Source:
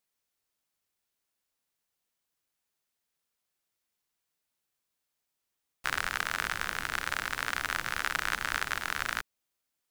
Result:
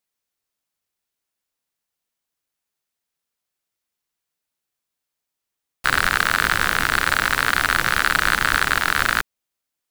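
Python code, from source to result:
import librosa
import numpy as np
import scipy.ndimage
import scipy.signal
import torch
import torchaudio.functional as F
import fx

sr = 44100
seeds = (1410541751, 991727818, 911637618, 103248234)

y = fx.leveller(x, sr, passes=3)
y = F.gain(torch.from_numpy(y), 6.5).numpy()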